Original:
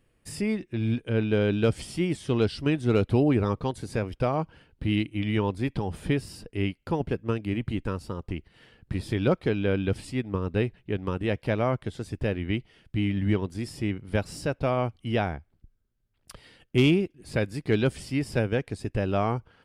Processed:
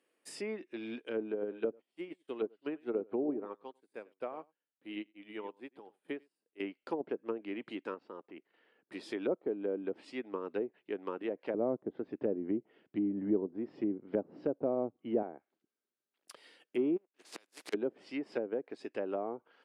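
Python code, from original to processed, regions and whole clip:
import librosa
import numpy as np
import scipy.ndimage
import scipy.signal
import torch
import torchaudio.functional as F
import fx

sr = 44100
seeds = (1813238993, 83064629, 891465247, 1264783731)

y = fx.chain(x, sr, fx.peak_eq(hz=5600.0, db=-13.5, octaves=0.83),
    fx.echo_single(ms=96, db=-11.5),
    fx.upward_expand(threshold_db=-40.0, expansion=2.5), at=(1.32, 6.6))
y = fx.chain(y, sr, fx.lowpass(hz=2200.0, slope=12),
    fx.low_shelf(hz=60.0, db=-2.0),
    fx.level_steps(step_db=9), at=(7.94, 8.92))
y = fx.chain(y, sr, fx.lowpass(hz=4400.0, slope=12),
    fx.tilt_eq(slope=-4.0), at=(11.54, 15.23))
y = fx.spec_flatten(y, sr, power=0.41, at=(16.96, 17.72), fade=0.02)
y = fx.level_steps(y, sr, step_db=10, at=(16.96, 17.72), fade=0.02)
y = fx.gate_flip(y, sr, shuts_db=-22.0, range_db=-29, at=(16.96, 17.72), fade=0.02)
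y = scipy.signal.sosfilt(scipy.signal.butter(4, 300.0, 'highpass', fs=sr, output='sos'), y)
y = fx.env_lowpass_down(y, sr, base_hz=560.0, full_db=-24.5)
y = y * 10.0 ** (-5.5 / 20.0)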